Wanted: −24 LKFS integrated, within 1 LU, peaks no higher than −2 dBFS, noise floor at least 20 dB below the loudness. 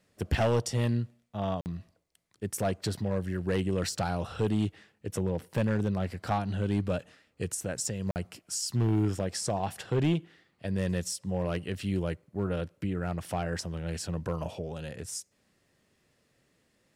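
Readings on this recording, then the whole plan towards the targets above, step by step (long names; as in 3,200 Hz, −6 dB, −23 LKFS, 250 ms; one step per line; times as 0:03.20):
share of clipped samples 0.9%; peaks flattened at −20.0 dBFS; number of dropouts 2; longest dropout 49 ms; integrated loudness −32.0 LKFS; sample peak −20.0 dBFS; target loudness −24.0 LKFS
→ clipped peaks rebuilt −20 dBFS
repair the gap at 0:01.61/0:08.11, 49 ms
level +8 dB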